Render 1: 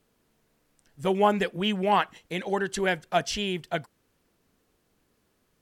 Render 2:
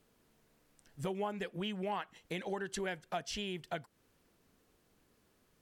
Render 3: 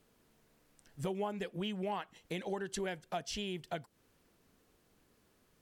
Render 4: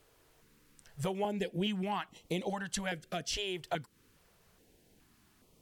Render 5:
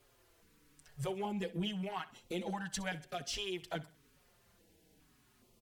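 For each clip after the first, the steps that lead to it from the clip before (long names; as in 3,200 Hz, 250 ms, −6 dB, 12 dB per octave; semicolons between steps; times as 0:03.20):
downward compressor 4 to 1, threshold −36 dBFS, peak gain reduction 16.5 dB; level −1 dB
dynamic equaliser 1,600 Hz, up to −4 dB, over −54 dBFS, Q 0.88; level +1 dB
notch on a step sequencer 2.4 Hz 210–1,600 Hz; level +5.5 dB
in parallel at −3.5 dB: soft clipping −36 dBFS, distortion −9 dB; on the sum: repeating echo 64 ms, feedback 42%, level −18 dB; barber-pole flanger 5.1 ms −0.94 Hz; level −3.5 dB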